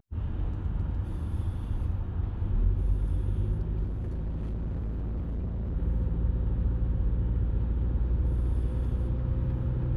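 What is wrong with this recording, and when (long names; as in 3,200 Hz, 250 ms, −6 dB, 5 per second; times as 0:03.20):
0:03.83–0:05.77: clipping −29 dBFS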